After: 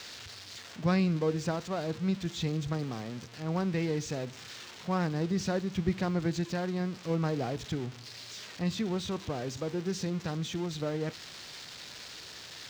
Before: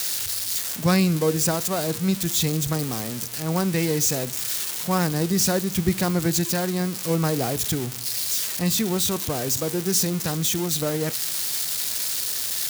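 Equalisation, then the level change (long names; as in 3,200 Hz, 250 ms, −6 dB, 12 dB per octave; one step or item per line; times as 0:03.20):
high-frequency loss of the air 180 metres
−7.0 dB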